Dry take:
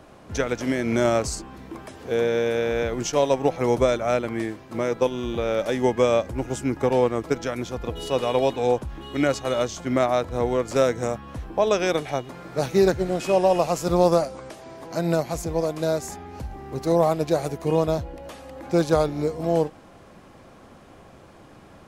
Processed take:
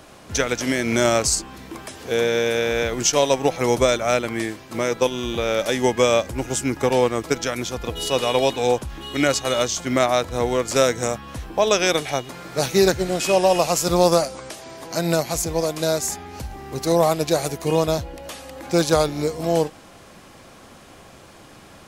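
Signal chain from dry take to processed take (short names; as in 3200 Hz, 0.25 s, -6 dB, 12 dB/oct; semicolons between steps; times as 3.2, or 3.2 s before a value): high shelf 2100 Hz +11.5 dB; gain +1 dB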